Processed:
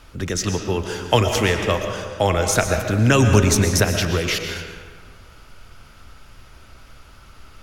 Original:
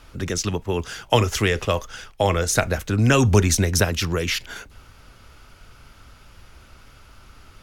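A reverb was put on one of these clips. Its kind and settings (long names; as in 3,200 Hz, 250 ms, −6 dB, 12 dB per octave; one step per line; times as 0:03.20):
comb and all-pass reverb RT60 1.6 s, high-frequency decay 0.65×, pre-delay 80 ms, DRR 5 dB
level +1 dB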